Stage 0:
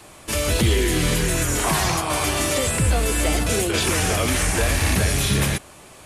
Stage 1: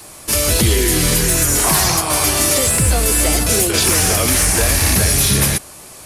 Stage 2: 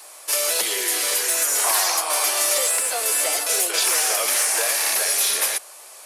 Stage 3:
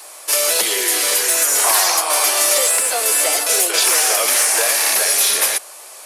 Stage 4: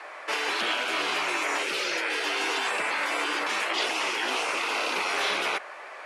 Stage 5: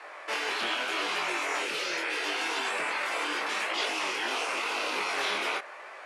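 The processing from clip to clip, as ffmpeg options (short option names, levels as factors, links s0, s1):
-af "aexciter=amount=1.8:drive=7.5:freq=4400,volume=1.5"
-af "highpass=f=510:w=0.5412,highpass=f=510:w=1.3066,volume=0.596"
-af "lowshelf=f=260:g=4,volume=1.78"
-af "lowpass=f=1900:t=q:w=2.2,afftfilt=real='re*lt(hypot(re,im),0.2)':imag='im*lt(hypot(re,im),0.2)':win_size=1024:overlap=0.75"
-af "flanger=delay=19:depth=6.7:speed=0.81"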